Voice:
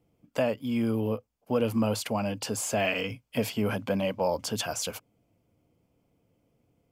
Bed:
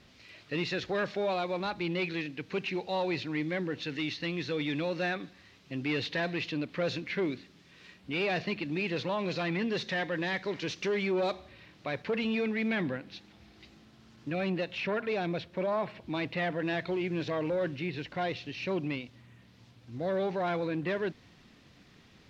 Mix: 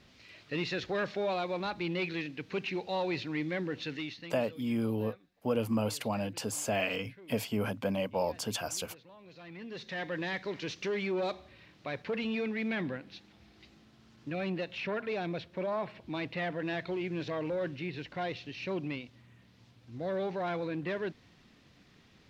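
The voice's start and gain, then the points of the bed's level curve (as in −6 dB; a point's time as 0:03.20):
3.95 s, −4.0 dB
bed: 0:03.90 −1.5 dB
0:04.70 −23 dB
0:09.20 −23 dB
0:10.09 −3 dB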